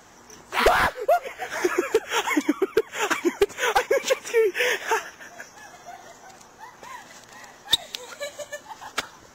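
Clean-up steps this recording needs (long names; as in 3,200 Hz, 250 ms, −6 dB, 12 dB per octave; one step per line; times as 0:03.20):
repair the gap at 0:00.79/0:04.16/0:04.76/0:06.77, 2.4 ms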